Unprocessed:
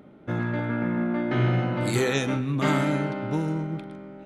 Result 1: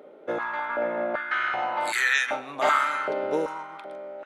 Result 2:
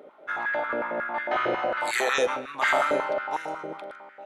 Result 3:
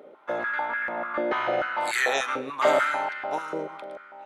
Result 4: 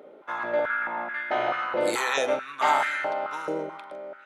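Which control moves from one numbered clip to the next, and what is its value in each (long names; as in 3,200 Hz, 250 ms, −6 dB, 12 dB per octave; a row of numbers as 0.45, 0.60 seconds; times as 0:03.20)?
high-pass on a step sequencer, speed: 2.6, 11, 6.8, 4.6 Hertz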